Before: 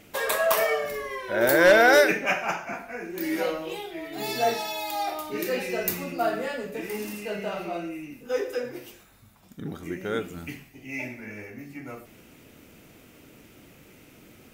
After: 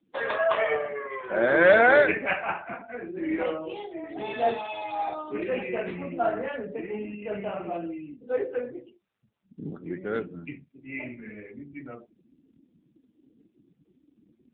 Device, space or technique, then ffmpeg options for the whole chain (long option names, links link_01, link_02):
mobile call with aggressive noise cancelling: -filter_complex "[0:a]asplit=3[link_01][link_02][link_03];[link_01]afade=type=out:start_time=3.94:duration=0.02[link_04];[link_02]equalizer=frequency=89:width_type=o:width=0.24:gain=3,afade=type=in:start_time=3.94:duration=0.02,afade=type=out:start_time=4.38:duration=0.02[link_05];[link_03]afade=type=in:start_time=4.38:duration=0.02[link_06];[link_04][link_05][link_06]amix=inputs=3:normalize=0,highpass=frequency=120:width=0.5412,highpass=frequency=120:width=1.3066,afftdn=noise_reduction=35:noise_floor=-40" -ar 8000 -c:a libopencore_amrnb -b:a 7950